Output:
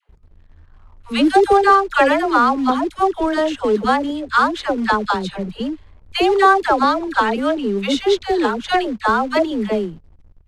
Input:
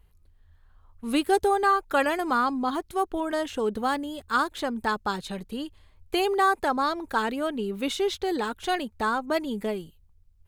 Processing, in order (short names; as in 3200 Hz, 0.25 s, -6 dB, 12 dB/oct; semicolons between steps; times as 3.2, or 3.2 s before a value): dispersion lows, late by 92 ms, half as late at 660 Hz; in parallel at -8 dB: companded quantiser 4-bit; on the sum: air absorption 79 m; mismatched tape noise reduction decoder only; gain +7 dB